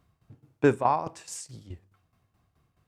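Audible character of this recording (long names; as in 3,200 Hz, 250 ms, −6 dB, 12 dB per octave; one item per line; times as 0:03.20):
tremolo saw down 4.7 Hz, depth 75%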